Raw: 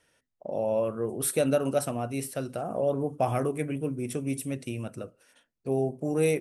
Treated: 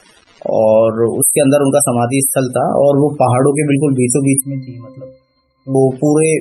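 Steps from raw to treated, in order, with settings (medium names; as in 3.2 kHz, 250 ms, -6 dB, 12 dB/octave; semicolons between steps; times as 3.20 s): tone controls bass -1 dB, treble +10 dB; gain riding within 3 dB 2 s; crackle 330 per s -41 dBFS; 4.40–5.75 s: pitch-class resonator C, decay 0.31 s; loudest bins only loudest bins 64; loudness maximiser +19 dB; trim -1 dB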